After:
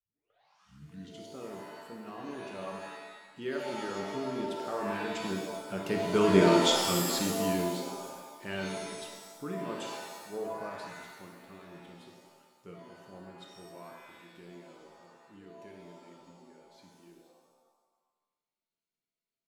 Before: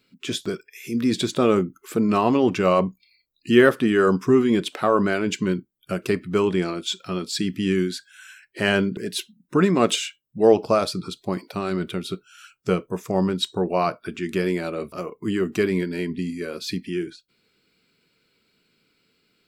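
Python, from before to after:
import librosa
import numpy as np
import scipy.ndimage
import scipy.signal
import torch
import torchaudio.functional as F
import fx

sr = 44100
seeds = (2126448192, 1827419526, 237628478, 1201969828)

y = fx.tape_start_head(x, sr, length_s=1.4)
y = fx.doppler_pass(y, sr, speed_mps=11, closest_m=2.4, pass_at_s=6.56)
y = fx.rev_shimmer(y, sr, seeds[0], rt60_s=1.2, semitones=7, shimmer_db=-2, drr_db=1.5)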